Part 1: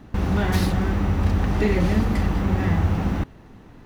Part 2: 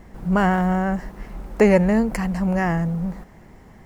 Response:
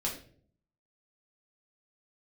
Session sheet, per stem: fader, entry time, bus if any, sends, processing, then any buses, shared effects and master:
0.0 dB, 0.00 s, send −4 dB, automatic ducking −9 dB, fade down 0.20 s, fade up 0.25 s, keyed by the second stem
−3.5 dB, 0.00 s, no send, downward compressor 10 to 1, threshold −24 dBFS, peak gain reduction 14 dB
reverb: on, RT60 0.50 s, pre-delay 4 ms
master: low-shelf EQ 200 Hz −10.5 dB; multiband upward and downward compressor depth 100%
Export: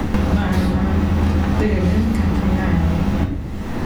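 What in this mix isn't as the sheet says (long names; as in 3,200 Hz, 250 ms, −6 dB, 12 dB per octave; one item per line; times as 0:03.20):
stem 2: polarity flipped
master: missing low-shelf EQ 200 Hz −10.5 dB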